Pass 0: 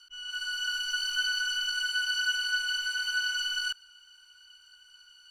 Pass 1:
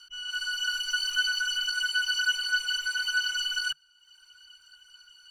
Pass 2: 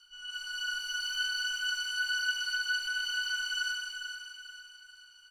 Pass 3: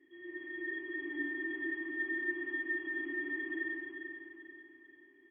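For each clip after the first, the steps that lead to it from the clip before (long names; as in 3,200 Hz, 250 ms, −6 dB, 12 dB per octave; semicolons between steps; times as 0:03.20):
reverb reduction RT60 0.85 s; parametric band 150 Hz +10.5 dB 0.29 octaves; level +4 dB
repeating echo 440 ms, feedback 43%, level −8.5 dB; dense smooth reverb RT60 2.2 s, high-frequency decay 0.95×, DRR −1.5 dB; level −8.5 dB
voice inversion scrambler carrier 3,300 Hz; level −4 dB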